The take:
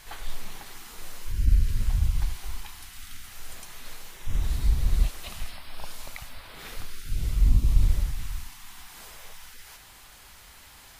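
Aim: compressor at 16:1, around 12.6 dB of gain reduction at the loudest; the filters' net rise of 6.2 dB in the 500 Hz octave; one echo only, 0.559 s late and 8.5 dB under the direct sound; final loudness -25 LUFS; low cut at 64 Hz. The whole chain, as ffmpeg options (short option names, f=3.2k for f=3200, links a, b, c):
-af "highpass=64,equalizer=f=500:t=o:g=8,acompressor=threshold=-33dB:ratio=16,aecho=1:1:559:0.376,volume=16.5dB"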